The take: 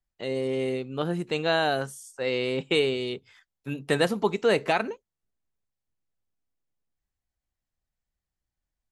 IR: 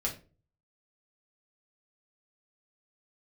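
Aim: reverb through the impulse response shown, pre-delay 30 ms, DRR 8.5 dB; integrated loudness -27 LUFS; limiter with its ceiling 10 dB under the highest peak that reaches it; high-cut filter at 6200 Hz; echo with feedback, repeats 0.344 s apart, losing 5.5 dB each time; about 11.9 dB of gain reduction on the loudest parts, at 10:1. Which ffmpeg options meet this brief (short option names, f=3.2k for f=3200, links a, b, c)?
-filter_complex "[0:a]lowpass=6.2k,acompressor=threshold=-30dB:ratio=10,alimiter=level_in=3dB:limit=-24dB:level=0:latency=1,volume=-3dB,aecho=1:1:344|688|1032|1376|1720|2064|2408:0.531|0.281|0.149|0.079|0.0419|0.0222|0.0118,asplit=2[a][b];[1:a]atrim=start_sample=2205,adelay=30[c];[b][c]afir=irnorm=-1:irlink=0,volume=-12.5dB[d];[a][d]amix=inputs=2:normalize=0,volume=10dB"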